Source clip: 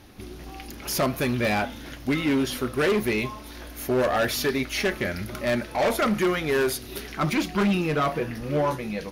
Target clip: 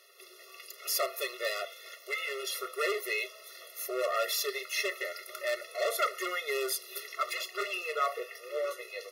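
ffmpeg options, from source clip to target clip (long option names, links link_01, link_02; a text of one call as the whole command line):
ffmpeg -i in.wav -af "highpass=frequency=1200:poles=1,highshelf=frequency=11000:gain=3,afftfilt=real='re*eq(mod(floor(b*sr/1024/360),2),1)':imag='im*eq(mod(floor(b*sr/1024/360),2),1)':win_size=1024:overlap=0.75" out.wav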